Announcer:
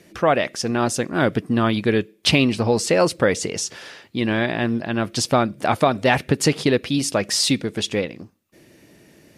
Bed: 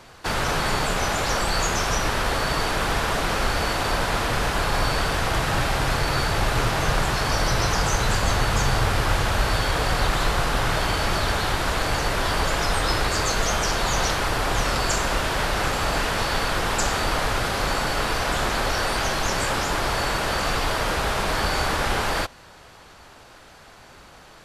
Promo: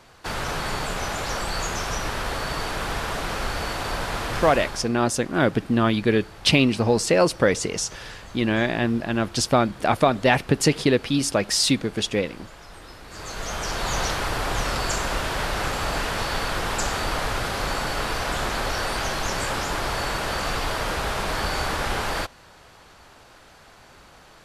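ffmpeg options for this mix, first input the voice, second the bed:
ffmpeg -i stem1.wav -i stem2.wav -filter_complex "[0:a]adelay=4200,volume=-1dB[link_01];[1:a]volume=14.5dB,afade=type=out:start_time=4.43:duration=0.45:silence=0.141254,afade=type=in:start_time=13.06:duration=0.88:silence=0.112202[link_02];[link_01][link_02]amix=inputs=2:normalize=0" out.wav

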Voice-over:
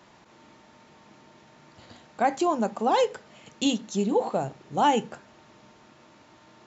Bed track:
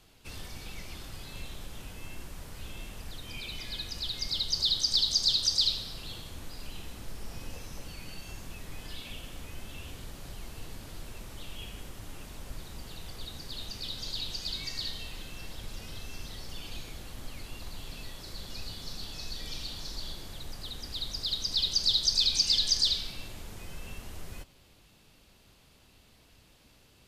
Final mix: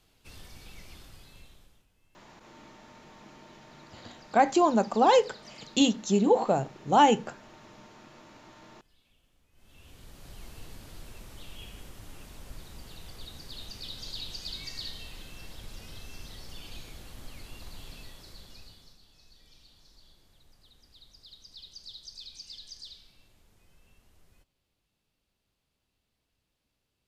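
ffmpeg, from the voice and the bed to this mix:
ffmpeg -i stem1.wav -i stem2.wav -filter_complex "[0:a]adelay=2150,volume=2dB[link_01];[1:a]volume=17dB,afade=type=out:start_time=0.93:duration=0.93:silence=0.1,afade=type=in:start_time=9.52:duration=0.92:silence=0.0707946,afade=type=out:start_time=17.85:duration=1.14:silence=0.141254[link_02];[link_01][link_02]amix=inputs=2:normalize=0" out.wav

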